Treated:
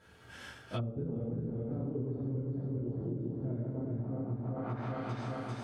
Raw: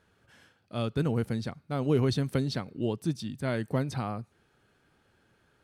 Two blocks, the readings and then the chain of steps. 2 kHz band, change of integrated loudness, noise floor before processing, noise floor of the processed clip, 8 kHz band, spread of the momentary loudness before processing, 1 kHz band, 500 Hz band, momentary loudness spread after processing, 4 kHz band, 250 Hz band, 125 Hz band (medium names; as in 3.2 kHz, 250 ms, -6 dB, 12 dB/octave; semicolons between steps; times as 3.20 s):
no reading, -6.5 dB, -69 dBFS, -56 dBFS, under -10 dB, 9 LU, -5.5 dB, -7.5 dB, 3 LU, under -10 dB, -5.0 dB, -3.5 dB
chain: backward echo that repeats 198 ms, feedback 72%, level -1 dB; gated-style reverb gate 200 ms falling, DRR -8 dB; low-pass that closes with the level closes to 410 Hz, closed at -18.5 dBFS; compression 12:1, threshold -33 dBFS, peak gain reduction 22.5 dB